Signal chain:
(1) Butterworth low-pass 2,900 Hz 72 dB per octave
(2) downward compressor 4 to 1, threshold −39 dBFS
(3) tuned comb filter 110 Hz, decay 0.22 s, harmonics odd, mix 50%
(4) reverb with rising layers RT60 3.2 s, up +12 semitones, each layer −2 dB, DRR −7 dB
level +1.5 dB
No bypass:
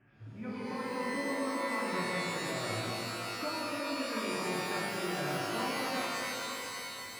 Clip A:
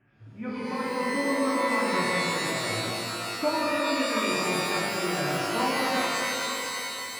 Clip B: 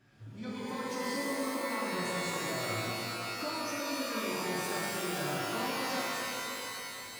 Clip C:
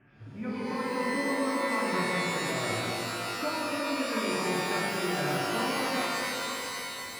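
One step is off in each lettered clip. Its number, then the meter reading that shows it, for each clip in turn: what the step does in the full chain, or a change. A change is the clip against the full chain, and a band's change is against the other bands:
2, average gain reduction 6.0 dB
1, 8 kHz band +3.0 dB
3, change in integrated loudness +5.0 LU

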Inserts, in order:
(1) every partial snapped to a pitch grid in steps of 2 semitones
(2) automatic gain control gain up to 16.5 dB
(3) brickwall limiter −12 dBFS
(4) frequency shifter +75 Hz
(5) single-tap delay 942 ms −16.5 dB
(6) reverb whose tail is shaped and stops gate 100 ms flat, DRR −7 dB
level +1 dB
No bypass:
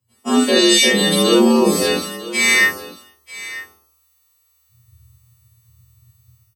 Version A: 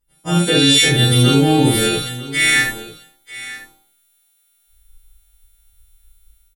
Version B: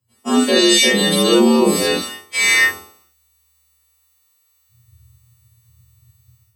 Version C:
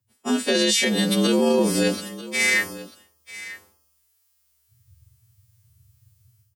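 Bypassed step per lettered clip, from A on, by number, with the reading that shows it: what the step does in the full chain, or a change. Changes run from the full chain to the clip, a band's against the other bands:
4, 125 Hz band +14.5 dB
5, change in momentary loudness spread −10 LU
6, 125 Hz band +5.0 dB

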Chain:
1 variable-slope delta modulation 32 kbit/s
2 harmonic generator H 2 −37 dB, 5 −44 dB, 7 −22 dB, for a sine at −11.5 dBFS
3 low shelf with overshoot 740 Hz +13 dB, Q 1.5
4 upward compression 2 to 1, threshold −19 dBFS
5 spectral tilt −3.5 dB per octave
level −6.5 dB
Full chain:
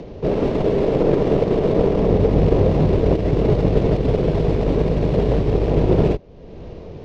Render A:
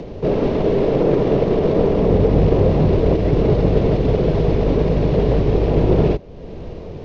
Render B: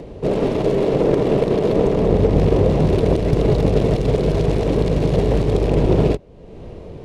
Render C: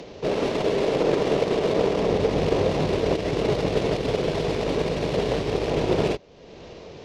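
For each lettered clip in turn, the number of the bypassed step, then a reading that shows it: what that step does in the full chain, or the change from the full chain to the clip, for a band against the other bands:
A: 2, change in momentary loudness spread +1 LU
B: 1, 4 kHz band +3.0 dB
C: 5, 4 kHz band +10.5 dB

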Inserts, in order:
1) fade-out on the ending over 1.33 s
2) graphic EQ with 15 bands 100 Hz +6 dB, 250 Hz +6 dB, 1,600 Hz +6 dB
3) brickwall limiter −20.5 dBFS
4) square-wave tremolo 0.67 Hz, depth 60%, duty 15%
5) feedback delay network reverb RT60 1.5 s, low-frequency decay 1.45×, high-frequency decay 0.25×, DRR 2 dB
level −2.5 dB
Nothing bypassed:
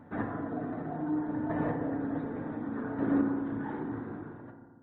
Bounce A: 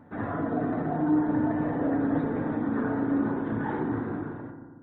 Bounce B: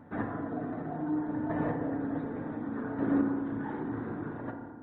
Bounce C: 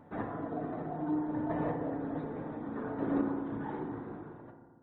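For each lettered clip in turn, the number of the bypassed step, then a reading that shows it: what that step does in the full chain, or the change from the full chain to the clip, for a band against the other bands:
4, change in momentary loudness spread −3 LU
1, change in momentary loudness spread −3 LU
2, 2 kHz band −3.0 dB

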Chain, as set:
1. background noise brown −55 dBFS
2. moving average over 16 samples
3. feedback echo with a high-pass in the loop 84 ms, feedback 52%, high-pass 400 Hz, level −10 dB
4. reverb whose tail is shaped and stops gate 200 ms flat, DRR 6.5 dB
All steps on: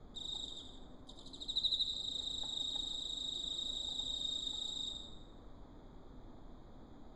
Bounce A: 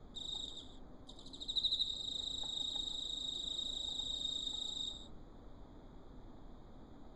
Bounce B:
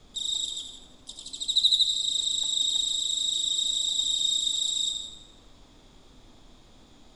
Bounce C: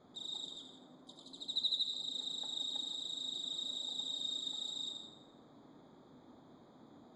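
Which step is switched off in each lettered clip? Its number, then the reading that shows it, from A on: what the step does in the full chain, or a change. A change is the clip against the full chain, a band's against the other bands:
3, echo-to-direct ratio −4.5 dB to −6.5 dB
2, change in momentary loudness spread −6 LU
1, change in momentary loudness spread −3 LU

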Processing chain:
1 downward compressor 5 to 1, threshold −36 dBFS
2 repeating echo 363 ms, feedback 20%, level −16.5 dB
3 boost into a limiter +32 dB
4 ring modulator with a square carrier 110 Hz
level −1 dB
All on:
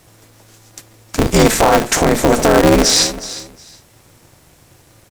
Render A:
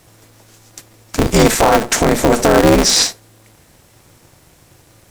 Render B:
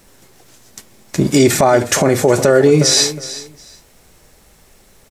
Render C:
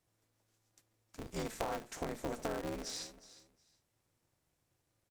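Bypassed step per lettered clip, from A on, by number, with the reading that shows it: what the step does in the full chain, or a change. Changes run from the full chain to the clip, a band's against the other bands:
2, change in momentary loudness spread −8 LU
4, 1 kHz band −3.5 dB
3, change in crest factor +9.0 dB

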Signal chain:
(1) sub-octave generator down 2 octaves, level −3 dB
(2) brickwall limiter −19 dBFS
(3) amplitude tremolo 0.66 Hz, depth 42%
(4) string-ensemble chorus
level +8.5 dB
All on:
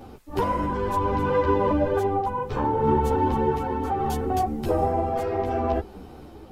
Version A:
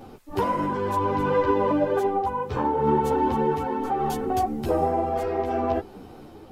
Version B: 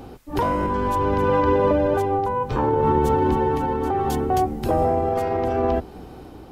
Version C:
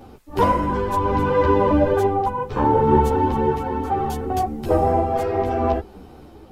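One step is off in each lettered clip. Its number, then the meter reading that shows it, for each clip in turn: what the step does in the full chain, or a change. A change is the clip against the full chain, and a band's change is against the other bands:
1, 125 Hz band −4.0 dB
4, change in crest factor −3.0 dB
2, average gain reduction 3.0 dB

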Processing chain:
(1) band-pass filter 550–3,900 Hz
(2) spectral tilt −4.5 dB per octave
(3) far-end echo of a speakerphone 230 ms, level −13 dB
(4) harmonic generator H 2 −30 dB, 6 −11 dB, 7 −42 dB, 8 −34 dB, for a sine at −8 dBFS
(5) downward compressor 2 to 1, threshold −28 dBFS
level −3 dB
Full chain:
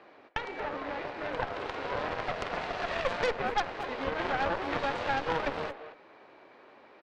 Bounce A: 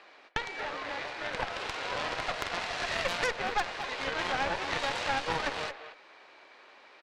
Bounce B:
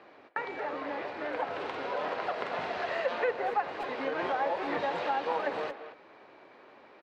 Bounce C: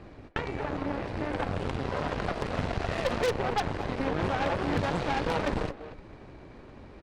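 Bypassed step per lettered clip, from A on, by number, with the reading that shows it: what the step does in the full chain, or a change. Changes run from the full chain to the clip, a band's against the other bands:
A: 2, 8 kHz band +11.5 dB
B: 4, change in crest factor −3.0 dB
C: 1, 125 Hz band +10.5 dB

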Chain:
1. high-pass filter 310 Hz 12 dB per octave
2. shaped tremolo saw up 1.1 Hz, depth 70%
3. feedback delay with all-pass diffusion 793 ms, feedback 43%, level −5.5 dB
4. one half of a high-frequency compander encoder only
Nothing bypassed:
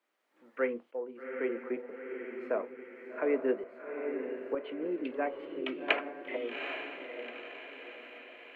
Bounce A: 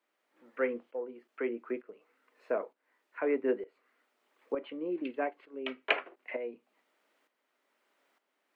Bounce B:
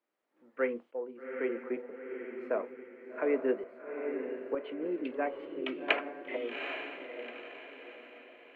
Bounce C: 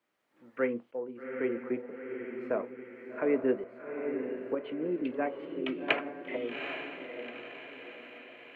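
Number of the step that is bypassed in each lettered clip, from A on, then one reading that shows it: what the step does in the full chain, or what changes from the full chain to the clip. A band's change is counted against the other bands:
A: 3, change in momentary loudness spread −1 LU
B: 4, change in momentary loudness spread +2 LU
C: 1, 250 Hz band +3.5 dB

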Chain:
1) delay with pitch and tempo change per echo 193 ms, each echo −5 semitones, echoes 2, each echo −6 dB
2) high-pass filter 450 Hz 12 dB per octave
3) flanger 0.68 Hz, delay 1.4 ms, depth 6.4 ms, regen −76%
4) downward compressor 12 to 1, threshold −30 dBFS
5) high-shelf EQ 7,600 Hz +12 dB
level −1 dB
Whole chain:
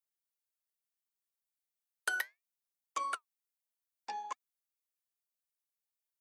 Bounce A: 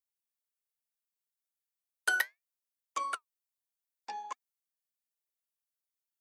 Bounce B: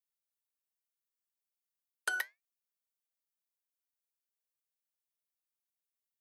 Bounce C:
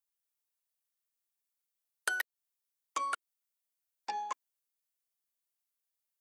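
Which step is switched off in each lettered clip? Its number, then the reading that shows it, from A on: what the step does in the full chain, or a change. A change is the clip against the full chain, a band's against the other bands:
4, average gain reduction 2.0 dB
1, 1 kHz band −10.0 dB
3, change in crest factor +2.5 dB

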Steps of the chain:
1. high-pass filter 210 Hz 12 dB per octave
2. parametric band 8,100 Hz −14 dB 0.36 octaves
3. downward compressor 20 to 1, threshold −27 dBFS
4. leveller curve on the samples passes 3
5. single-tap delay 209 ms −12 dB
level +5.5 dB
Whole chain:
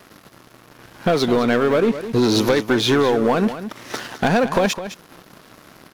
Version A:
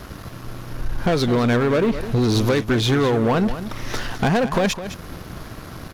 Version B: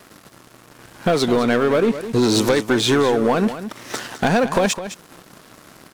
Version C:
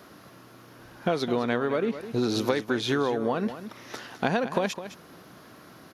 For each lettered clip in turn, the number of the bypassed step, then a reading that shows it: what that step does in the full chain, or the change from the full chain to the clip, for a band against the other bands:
1, 125 Hz band +7.5 dB
2, 8 kHz band +4.5 dB
4, change in crest factor +8.0 dB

